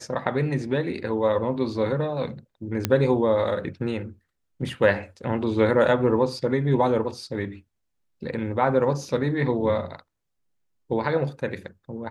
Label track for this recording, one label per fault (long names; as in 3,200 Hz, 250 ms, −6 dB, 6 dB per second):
2.850000	2.850000	click −7 dBFS